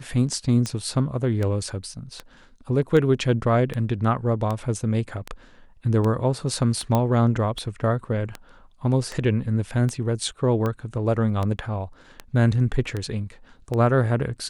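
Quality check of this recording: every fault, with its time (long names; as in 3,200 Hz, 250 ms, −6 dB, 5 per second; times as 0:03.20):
scratch tick 78 rpm −15 dBFS
0:06.95: click −9 dBFS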